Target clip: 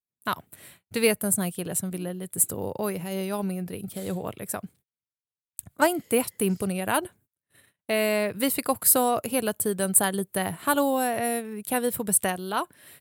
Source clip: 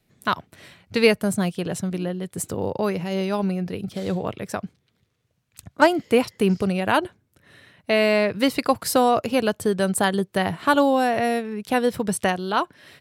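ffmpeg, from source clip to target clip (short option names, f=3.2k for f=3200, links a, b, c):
-af "agate=range=-33dB:threshold=-49dB:ratio=16:detection=peak,aexciter=amount=4.9:drive=8.4:freq=7.9k,volume=-5.5dB"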